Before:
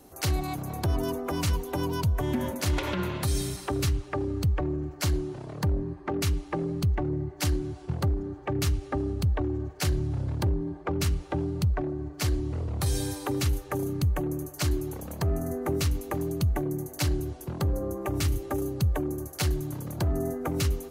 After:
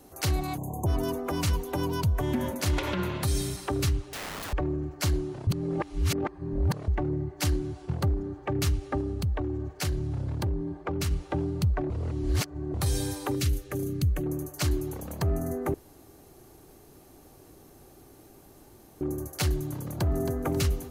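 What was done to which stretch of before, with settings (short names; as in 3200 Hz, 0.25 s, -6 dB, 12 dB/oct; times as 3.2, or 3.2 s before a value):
0.58–0.87 spectral delete 1100–6200 Hz
4.04–4.53 wrapped overs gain 32 dB
5.47–6.88 reverse
9–11.11 compressor 1.5:1, threshold -29 dBFS
11.9–12.74 reverse
13.35–14.26 bell 910 Hz -13 dB 1 oct
15.74–19.01 room tone
19.84–20.38 echo throw 0.27 s, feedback 45%, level -8.5 dB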